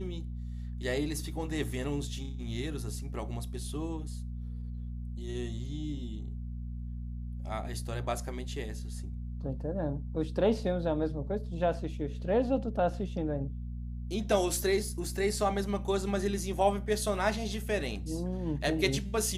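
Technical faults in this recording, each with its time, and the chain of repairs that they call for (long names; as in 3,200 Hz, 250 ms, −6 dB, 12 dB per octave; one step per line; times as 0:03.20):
mains hum 60 Hz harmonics 4 −38 dBFS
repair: hum removal 60 Hz, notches 4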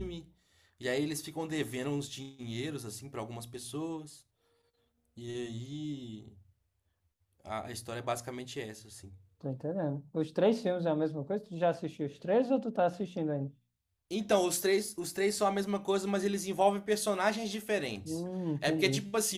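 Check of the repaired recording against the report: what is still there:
none of them is left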